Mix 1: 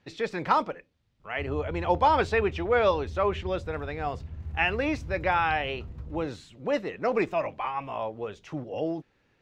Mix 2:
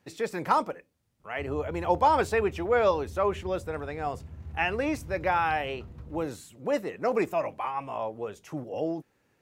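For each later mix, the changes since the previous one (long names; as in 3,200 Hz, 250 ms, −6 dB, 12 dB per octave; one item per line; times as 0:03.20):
speech: remove drawn EQ curve 880 Hz 0 dB, 3,700 Hz +5 dB, 6,000 Hz −3 dB, 12,000 Hz −20 dB
master: add high-pass filter 100 Hz 6 dB per octave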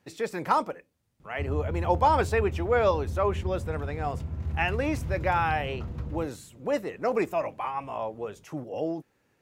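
background +9.5 dB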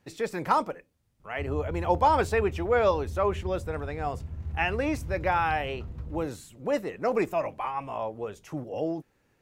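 background −7.5 dB
master: remove high-pass filter 100 Hz 6 dB per octave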